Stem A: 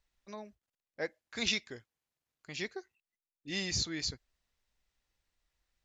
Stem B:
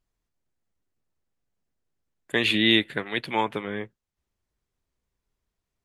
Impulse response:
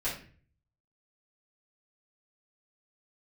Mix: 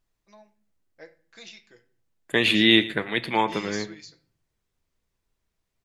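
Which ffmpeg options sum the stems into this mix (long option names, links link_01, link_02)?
-filter_complex "[0:a]highpass=frequency=280:poles=1,aecho=1:1:5.9:0.58,acompressor=threshold=-34dB:ratio=10,volume=-1dB,asplit=2[link_01][link_02];[link_02]volume=-20.5dB[link_03];[1:a]volume=1.5dB,asplit=4[link_04][link_05][link_06][link_07];[link_05]volume=-18.5dB[link_08];[link_06]volume=-18dB[link_09];[link_07]apad=whole_len=258238[link_10];[link_01][link_10]sidechaingate=range=-8dB:threshold=-42dB:ratio=16:detection=peak[link_11];[2:a]atrim=start_sample=2205[link_12];[link_03][link_08]amix=inputs=2:normalize=0[link_13];[link_13][link_12]afir=irnorm=-1:irlink=0[link_14];[link_09]aecho=0:1:115:1[link_15];[link_11][link_04][link_14][link_15]amix=inputs=4:normalize=0"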